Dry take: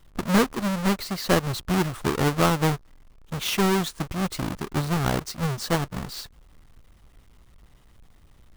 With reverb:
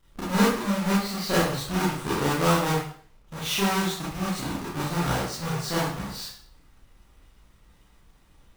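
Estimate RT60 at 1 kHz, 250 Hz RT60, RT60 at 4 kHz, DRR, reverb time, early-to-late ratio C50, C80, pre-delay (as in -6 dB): 0.50 s, 0.50 s, 0.50 s, -8.5 dB, 0.50 s, 0.5 dB, 5.5 dB, 27 ms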